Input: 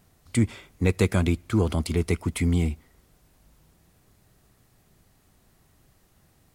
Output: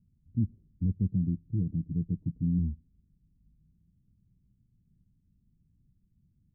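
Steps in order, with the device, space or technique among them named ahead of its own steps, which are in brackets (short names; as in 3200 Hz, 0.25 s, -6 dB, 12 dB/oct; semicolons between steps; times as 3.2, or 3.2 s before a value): the neighbour's flat through the wall (LPF 220 Hz 24 dB/oct; bell 190 Hz +3 dB); 1.11–2.59 comb 6.6 ms, depth 71%; gain -5.5 dB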